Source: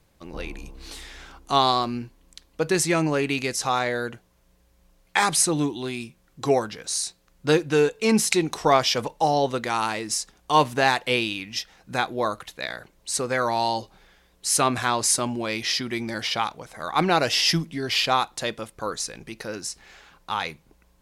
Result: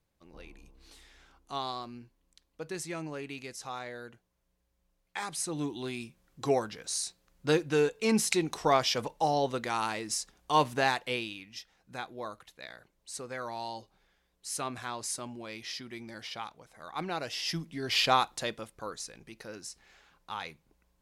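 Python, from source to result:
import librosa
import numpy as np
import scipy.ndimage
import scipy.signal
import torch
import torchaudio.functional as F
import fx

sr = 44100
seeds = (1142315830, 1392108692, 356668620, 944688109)

y = fx.gain(x, sr, db=fx.line((5.33, -16.0), (5.78, -6.5), (10.81, -6.5), (11.52, -14.5), (17.39, -14.5), (18.08, -2.5), (18.97, -11.0)))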